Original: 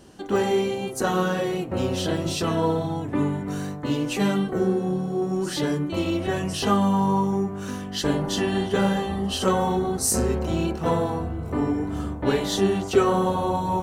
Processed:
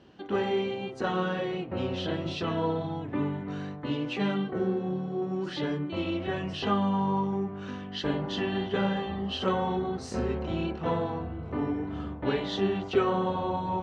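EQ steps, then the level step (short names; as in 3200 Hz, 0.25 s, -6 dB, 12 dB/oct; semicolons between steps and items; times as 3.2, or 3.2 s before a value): HPF 64 Hz; ladder low-pass 4300 Hz, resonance 25%; 0.0 dB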